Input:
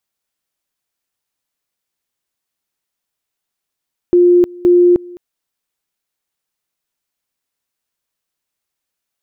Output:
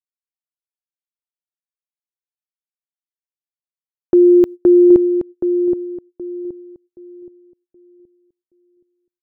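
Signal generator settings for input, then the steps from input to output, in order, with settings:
two-level tone 353 Hz -5.5 dBFS, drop 24 dB, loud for 0.31 s, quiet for 0.21 s, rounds 2
gate -22 dBFS, range -29 dB; on a send: filtered feedback delay 773 ms, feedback 31%, low-pass 890 Hz, level -7 dB

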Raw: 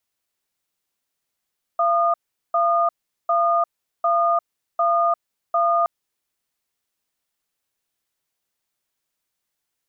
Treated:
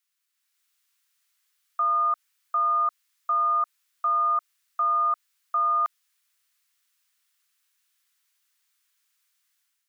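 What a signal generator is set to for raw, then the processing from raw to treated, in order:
cadence 683 Hz, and 1.22 kHz, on 0.35 s, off 0.40 s, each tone -18.5 dBFS 4.07 s
peak limiter -18 dBFS; level rider gain up to 7 dB; high-pass 1.2 kHz 24 dB/octave

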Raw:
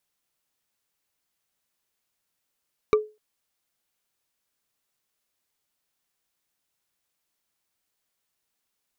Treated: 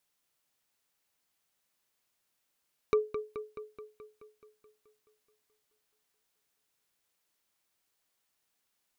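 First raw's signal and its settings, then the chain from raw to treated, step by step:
wood hit bar, length 0.25 s, lowest mode 427 Hz, decay 0.27 s, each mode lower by 6 dB, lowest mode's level -12 dB
bass shelf 200 Hz -3 dB; peak limiter -16.5 dBFS; feedback echo behind a low-pass 214 ms, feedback 64%, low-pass 3.9 kHz, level -9 dB

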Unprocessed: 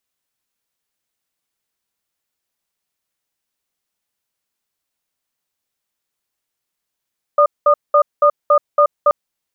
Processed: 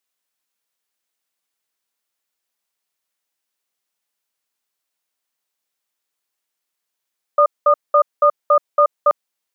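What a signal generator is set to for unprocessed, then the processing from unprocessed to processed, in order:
cadence 585 Hz, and 1.22 kHz, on 0.08 s, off 0.20 s, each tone -10.5 dBFS 1.73 s
high-pass 390 Hz 6 dB/octave

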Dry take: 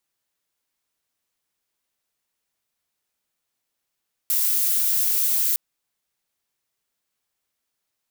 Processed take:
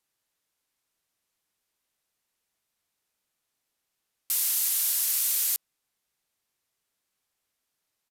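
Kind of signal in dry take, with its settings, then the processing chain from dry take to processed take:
noise violet, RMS -21 dBFS 1.26 s
resampled via 32 kHz

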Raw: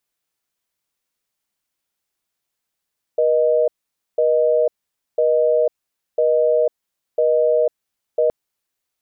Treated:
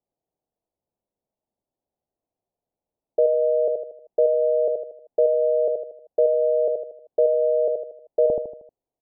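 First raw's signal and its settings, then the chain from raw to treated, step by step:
call progress tone busy tone, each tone -16 dBFS 5.12 s
steep low-pass 760 Hz 36 dB/octave; feedback delay 78 ms, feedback 42%, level -4 dB; tape noise reduction on one side only encoder only

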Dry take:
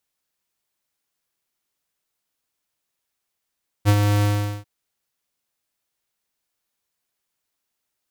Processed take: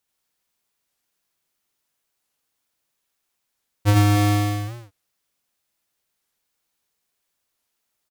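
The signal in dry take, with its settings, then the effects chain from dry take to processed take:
ADSR square 103 Hz, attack 38 ms, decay 60 ms, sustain -5 dB, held 0.38 s, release 413 ms -13 dBFS
loudspeakers at several distances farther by 29 m -1 dB, 42 m -10 dB, 98 m -10 dB; warped record 45 rpm, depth 250 cents

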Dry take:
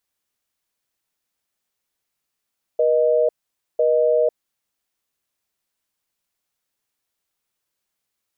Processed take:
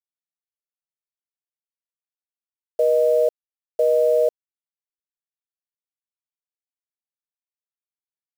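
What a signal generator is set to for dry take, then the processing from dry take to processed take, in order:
call progress tone busy tone, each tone -17 dBFS 1.75 s
bit crusher 7-bit

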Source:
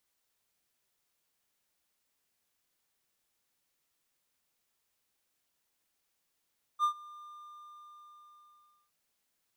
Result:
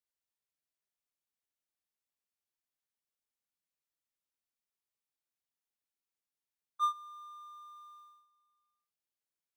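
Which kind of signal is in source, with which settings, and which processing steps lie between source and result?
ADSR triangle 1.2 kHz, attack 49 ms, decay 91 ms, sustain -23.5 dB, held 0.45 s, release 1670 ms -21 dBFS
gate -55 dBFS, range -16 dB

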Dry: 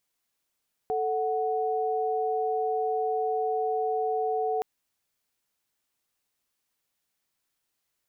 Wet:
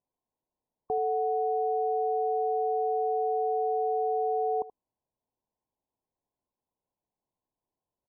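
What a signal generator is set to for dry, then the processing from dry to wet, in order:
chord A4/F#5 sine, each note -27.5 dBFS 3.72 s
brick-wall FIR low-pass 1.1 kHz; delay 78 ms -17.5 dB

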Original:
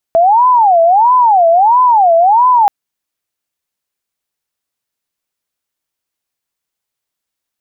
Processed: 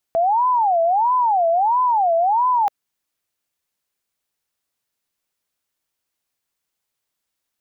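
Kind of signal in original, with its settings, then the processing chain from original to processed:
siren wail 662–1010 Hz 1.5 per s sine -5 dBFS 2.53 s
dynamic bell 610 Hz, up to -7 dB, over -25 dBFS, Q 4.7; peak limiter -14 dBFS

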